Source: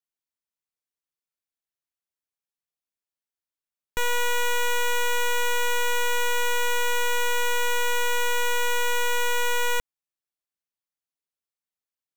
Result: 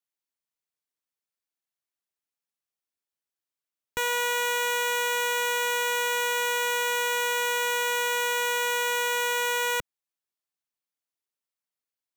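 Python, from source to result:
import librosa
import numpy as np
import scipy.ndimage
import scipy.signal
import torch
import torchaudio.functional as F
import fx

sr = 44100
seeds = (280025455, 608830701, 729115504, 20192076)

y = fx.highpass(x, sr, hz=130.0, slope=6)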